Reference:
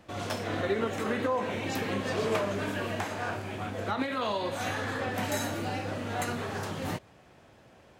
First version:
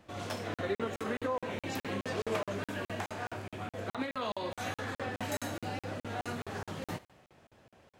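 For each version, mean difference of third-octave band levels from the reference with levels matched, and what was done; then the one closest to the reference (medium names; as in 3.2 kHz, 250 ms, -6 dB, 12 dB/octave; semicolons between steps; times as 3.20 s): 2.0 dB: thinning echo 73 ms, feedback 54%, level -19.5 dB; crackling interface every 0.21 s, samples 2048, zero, from 0.54 s; trim -4.5 dB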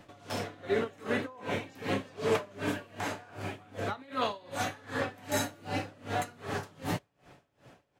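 8.5 dB: comb 7 ms, depth 34%; logarithmic tremolo 2.6 Hz, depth 25 dB; trim +2.5 dB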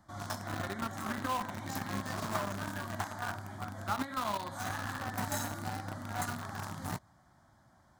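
4.5 dB: static phaser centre 1.1 kHz, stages 4; in parallel at -5 dB: bit crusher 5-bit; on the sum: trim -4 dB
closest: first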